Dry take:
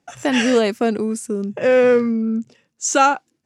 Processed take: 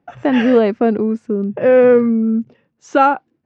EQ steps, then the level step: low-pass 1.3 kHz 6 dB/octave; distance through air 190 m; +5.0 dB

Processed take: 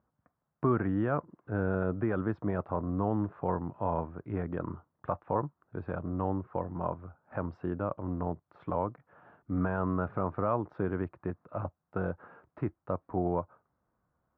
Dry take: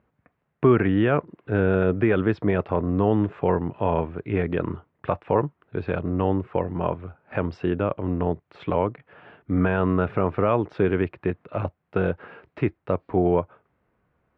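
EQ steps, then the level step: peaking EQ 420 Hz -6 dB 0.4 oct; resonant high shelf 1.8 kHz -12 dB, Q 1.5; -8.5 dB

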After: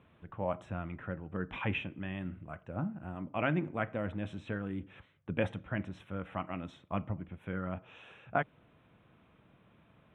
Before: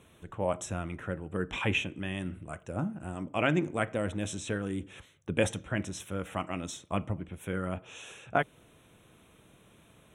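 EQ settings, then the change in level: distance through air 480 m; bass shelf 66 Hz -9.5 dB; peaking EQ 400 Hz -6 dB 1 oct; 0.0 dB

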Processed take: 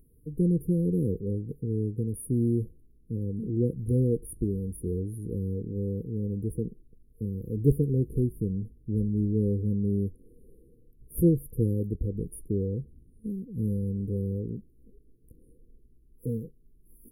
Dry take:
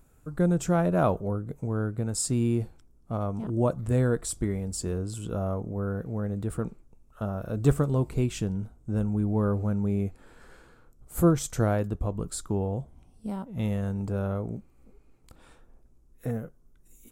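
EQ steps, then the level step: brick-wall FIR band-stop 510–9400 Hz; 0.0 dB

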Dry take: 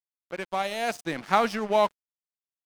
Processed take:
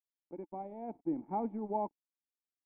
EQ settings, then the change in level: cascade formant filter u; +2.5 dB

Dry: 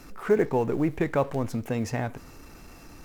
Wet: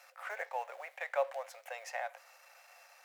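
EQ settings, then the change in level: rippled Chebyshev high-pass 520 Hz, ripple 6 dB; -3.0 dB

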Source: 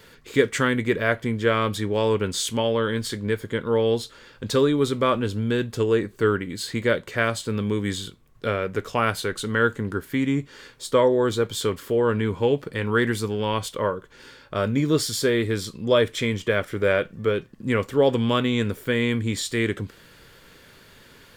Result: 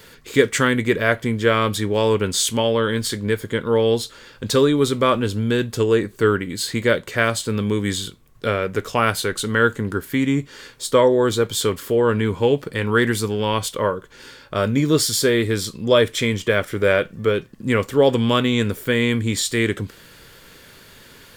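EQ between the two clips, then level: treble shelf 5 kHz +5.5 dB; +3.5 dB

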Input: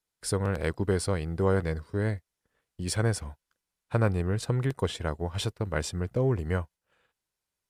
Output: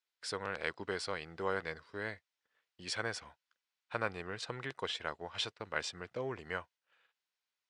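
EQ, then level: band-pass filter 3.5 kHz, Q 0.53; distance through air 95 m; +2.0 dB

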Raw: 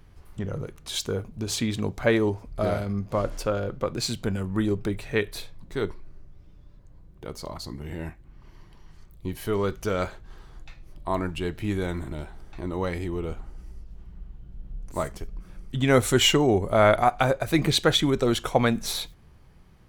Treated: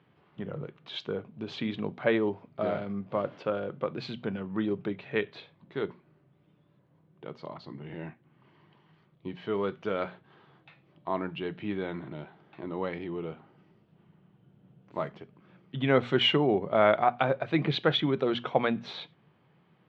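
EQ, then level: elliptic band-pass 140–3300 Hz, stop band 50 dB; hum notches 60/120/180/240 Hz; -3.5 dB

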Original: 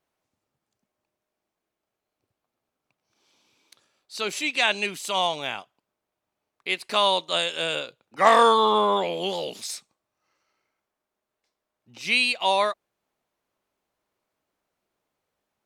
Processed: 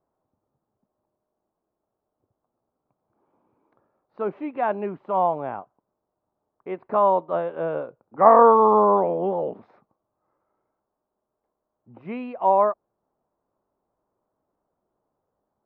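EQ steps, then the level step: low-pass 1.1 kHz 24 dB/octave; +5.0 dB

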